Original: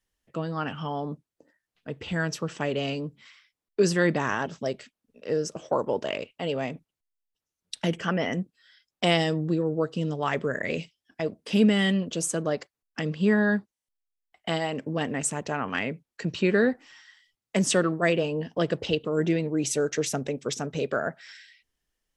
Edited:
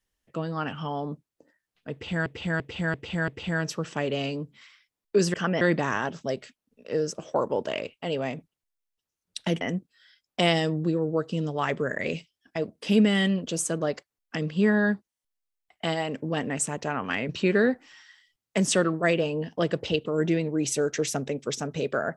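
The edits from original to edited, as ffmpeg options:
-filter_complex "[0:a]asplit=9[a][b][c][d][e][f][g][h][i];[a]atrim=end=2.262[j];[b]atrim=start=1.918:end=2.262[k];[c]atrim=start=1.918:end=2.262[l];[d]atrim=start=1.918:end=2.262[m];[e]atrim=start=1.918:end=3.982[n];[f]atrim=start=7.978:end=8.252[o];[g]atrim=start=3.978:end=7.982[p];[h]atrim=start=8.248:end=15.932[q];[i]atrim=start=16.278[r];[j][k]acrossfade=d=0.004:c1=hsin:c2=hsin[s];[s][l]acrossfade=d=0.004:c1=hsin:c2=hsin[t];[t][m]acrossfade=d=0.004:c1=hsin:c2=hsin[u];[u][n]acrossfade=d=0.004:c1=hsin:c2=hsin[v];[v][o]acrossfade=d=0.004:c1=hsin:c2=hsin[w];[w][p]acrossfade=d=0.004:c1=hsin:c2=hsin[x];[x][q]acrossfade=d=0.004:c1=hsin:c2=hsin[y];[y][r]acrossfade=d=0.004:c1=hsin:c2=hsin"

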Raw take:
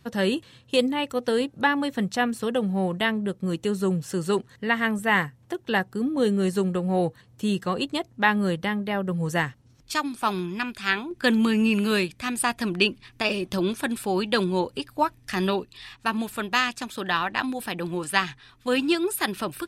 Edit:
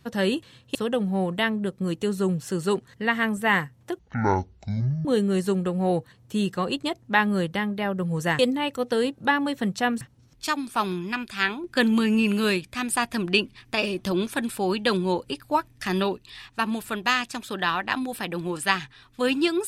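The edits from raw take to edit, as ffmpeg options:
-filter_complex "[0:a]asplit=6[a][b][c][d][e][f];[a]atrim=end=0.752[g];[b]atrim=start=2.368:end=5.614[h];[c]atrim=start=5.61:end=6.14,asetpts=PTS-STARTPTS,asetrate=22050,aresample=44100[i];[d]atrim=start=6.136:end=9.482[j];[e]atrim=start=0.748:end=2.372[k];[f]atrim=start=9.478[l];[g][h]acrossfade=d=0.004:c1=hsin:c2=hsin[m];[m][i]acrossfade=d=0.004:c1=hsin:c2=hsin[n];[n][j]acrossfade=d=0.004:c1=hsin:c2=hsin[o];[o][k]acrossfade=d=0.004:c1=hsin:c2=hsin[p];[p][l]acrossfade=d=0.004:c1=hsin:c2=hsin"

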